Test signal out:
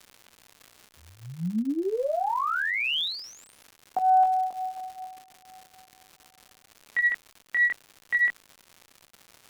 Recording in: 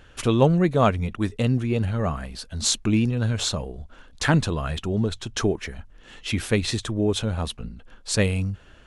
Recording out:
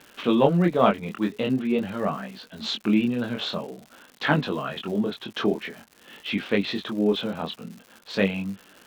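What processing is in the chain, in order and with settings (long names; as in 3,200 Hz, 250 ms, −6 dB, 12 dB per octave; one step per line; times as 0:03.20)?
Chebyshev band-pass filter 190–3,500 Hz, order 3
chorus effect 0.47 Hz, delay 20 ms, depth 4.7 ms
surface crackle 220 per second −41 dBFS
harmonic generator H 4 −33 dB, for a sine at −8 dBFS
level +4 dB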